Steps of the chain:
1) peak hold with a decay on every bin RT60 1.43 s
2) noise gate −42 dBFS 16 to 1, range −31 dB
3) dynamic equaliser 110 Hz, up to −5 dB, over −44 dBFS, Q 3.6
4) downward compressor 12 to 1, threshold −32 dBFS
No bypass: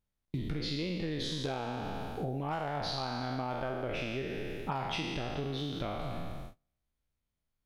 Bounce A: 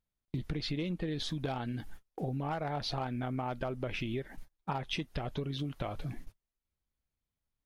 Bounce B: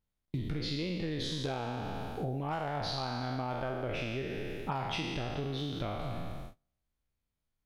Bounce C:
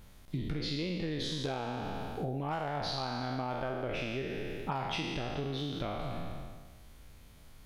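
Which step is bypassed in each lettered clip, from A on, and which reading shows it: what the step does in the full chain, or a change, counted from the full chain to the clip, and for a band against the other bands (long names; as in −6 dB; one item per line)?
1, 125 Hz band +3.0 dB
3, 125 Hz band +1.5 dB
2, change in momentary loudness spread +1 LU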